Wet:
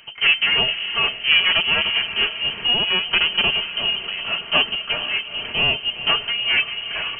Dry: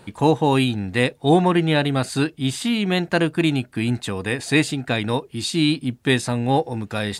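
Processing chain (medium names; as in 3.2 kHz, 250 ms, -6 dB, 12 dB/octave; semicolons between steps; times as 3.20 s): comb filter that takes the minimum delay 4.1 ms; on a send: echo that smears into a reverb 453 ms, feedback 52%, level -11 dB; on the sum: frequency inversion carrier 3.1 kHz; trim +2 dB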